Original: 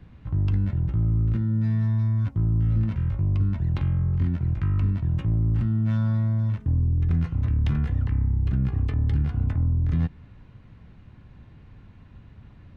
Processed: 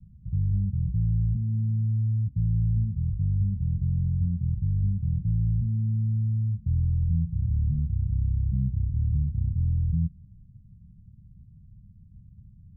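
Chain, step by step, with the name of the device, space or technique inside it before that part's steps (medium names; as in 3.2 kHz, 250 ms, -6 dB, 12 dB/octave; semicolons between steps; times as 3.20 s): the neighbour's flat through the wall (low-pass 170 Hz 24 dB/octave; peaking EQ 190 Hz +6.5 dB 0.48 oct); trim -2.5 dB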